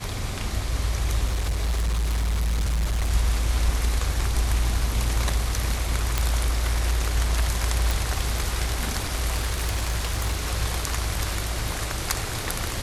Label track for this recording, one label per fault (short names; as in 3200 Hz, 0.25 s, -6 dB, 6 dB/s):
1.270000	3.110000	clipped -20.5 dBFS
6.180000	6.180000	pop
7.910000	7.910000	pop
9.320000	10.440000	clipped -20 dBFS